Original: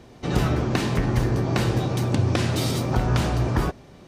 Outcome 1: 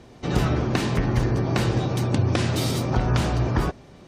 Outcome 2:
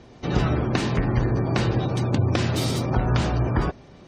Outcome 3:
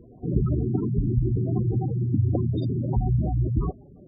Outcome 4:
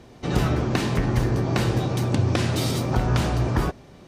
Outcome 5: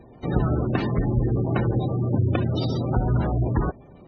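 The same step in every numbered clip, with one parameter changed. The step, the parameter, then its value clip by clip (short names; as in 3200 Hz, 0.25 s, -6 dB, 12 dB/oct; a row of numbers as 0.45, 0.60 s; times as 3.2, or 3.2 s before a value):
spectral gate, under each frame's peak: -45, -35, -10, -60, -20 dB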